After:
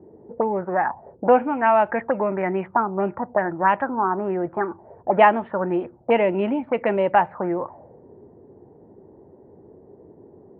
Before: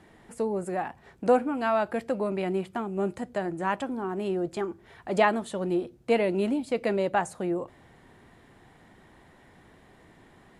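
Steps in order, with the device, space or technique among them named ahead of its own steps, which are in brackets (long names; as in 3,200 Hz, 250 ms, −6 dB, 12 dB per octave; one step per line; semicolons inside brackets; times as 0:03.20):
envelope filter bass rig (envelope-controlled low-pass 390–3,000 Hz up, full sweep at −23 dBFS; loudspeaker in its box 75–2,100 Hz, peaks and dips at 92 Hz +4 dB, 590 Hz +4 dB, 900 Hz +9 dB)
level +3 dB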